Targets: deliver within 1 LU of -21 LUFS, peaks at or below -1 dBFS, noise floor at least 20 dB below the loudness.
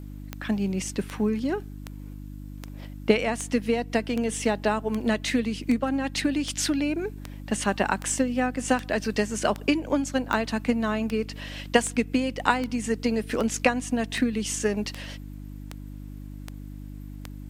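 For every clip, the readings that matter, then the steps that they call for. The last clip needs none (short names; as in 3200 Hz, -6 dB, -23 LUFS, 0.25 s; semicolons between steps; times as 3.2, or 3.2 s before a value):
clicks 23; hum 50 Hz; harmonics up to 300 Hz; hum level -37 dBFS; loudness -26.5 LUFS; peak -2.5 dBFS; loudness target -21.0 LUFS
-> de-click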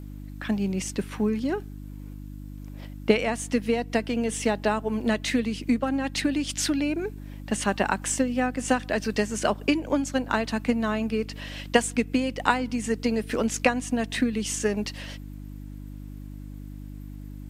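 clicks 0; hum 50 Hz; harmonics up to 300 Hz; hum level -37 dBFS
-> de-hum 50 Hz, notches 6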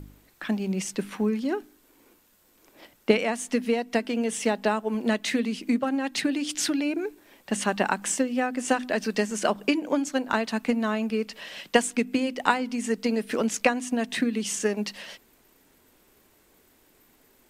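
hum none; loudness -27.0 LUFS; peak -2.5 dBFS; loudness target -21.0 LUFS
-> gain +6 dB; limiter -1 dBFS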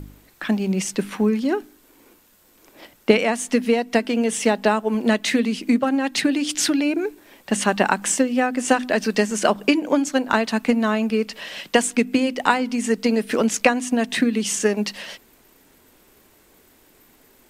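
loudness -21.0 LUFS; peak -1.0 dBFS; noise floor -56 dBFS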